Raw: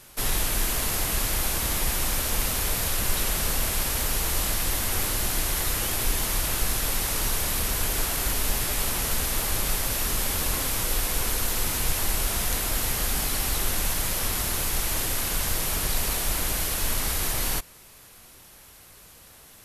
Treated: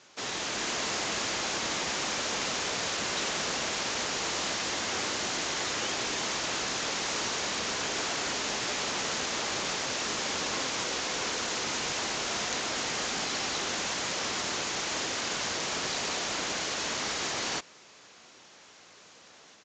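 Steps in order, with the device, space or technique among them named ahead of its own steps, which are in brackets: Bluetooth headset (high-pass 240 Hz 12 dB/octave; level rider gain up to 3.5 dB; resampled via 16 kHz; trim -3.5 dB; SBC 64 kbps 16 kHz)

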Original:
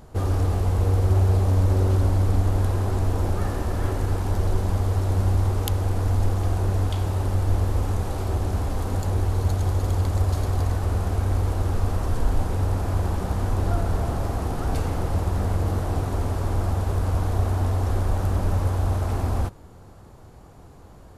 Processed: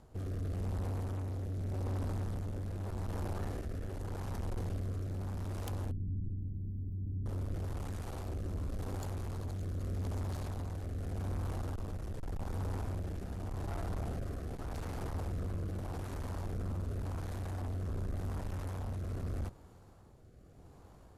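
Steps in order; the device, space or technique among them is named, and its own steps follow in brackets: overdriven rotary cabinet (valve stage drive 27 dB, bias 0.6; rotary cabinet horn 0.85 Hz); 5.91–7.26 s: inverse Chebyshev band-stop 1.1–7.2 kHz, stop band 70 dB; trim -6 dB

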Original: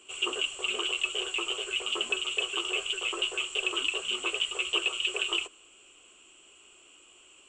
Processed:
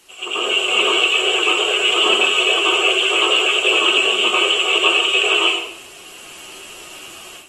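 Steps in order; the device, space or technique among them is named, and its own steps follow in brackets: filmed off a television (band-pass 220–6800 Hz; peaking EQ 680 Hz +6 dB 0.27 oct; reverberation RT60 0.70 s, pre-delay 81 ms, DRR -6.5 dB; white noise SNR 25 dB; level rider gain up to 12.5 dB; trim -1 dB; AAC 32 kbps 48 kHz)

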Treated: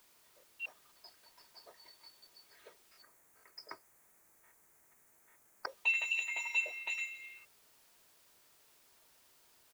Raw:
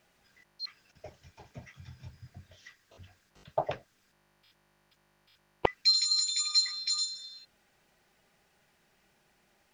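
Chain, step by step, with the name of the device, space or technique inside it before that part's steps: comb 3.3 ms, depth 48%; split-band scrambled radio (four frequency bands reordered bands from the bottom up 2341; band-pass 390–2900 Hz; white noise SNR 23 dB); 3.02–5.68 s: high-order bell 3.8 kHz -12.5 dB 1.2 oct; trim -2.5 dB

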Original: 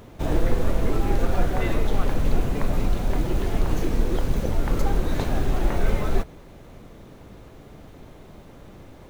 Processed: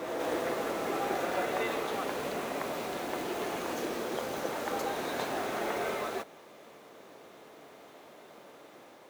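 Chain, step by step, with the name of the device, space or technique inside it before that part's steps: ghost voice (reverse; reverberation RT60 2.2 s, pre-delay 104 ms, DRR 1 dB; reverse; high-pass 450 Hz 12 dB/octave); trim -3 dB

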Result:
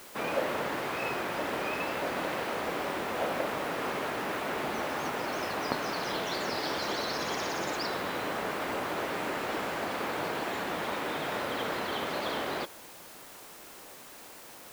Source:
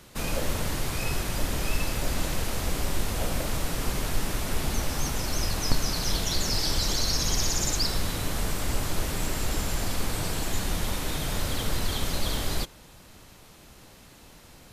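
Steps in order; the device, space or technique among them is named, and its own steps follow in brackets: wax cylinder (band-pass 370–2100 Hz; wow and flutter; white noise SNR 17 dB); trim +4.5 dB

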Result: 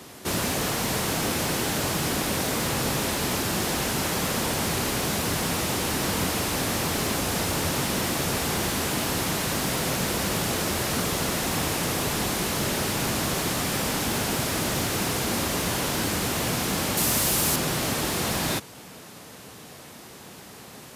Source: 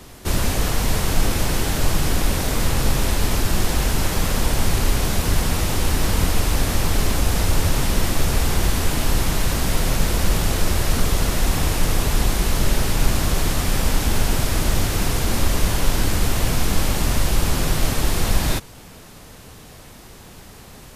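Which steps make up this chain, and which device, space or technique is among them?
high-pass 150 Hz 12 dB/octave; saturation between pre-emphasis and de-emphasis (treble shelf 2.2 kHz +11 dB; saturation -12 dBFS, distortion -20 dB; treble shelf 2.2 kHz -11 dB); 16.97–17.56 s: treble shelf 6.2 kHz +10.5 dB

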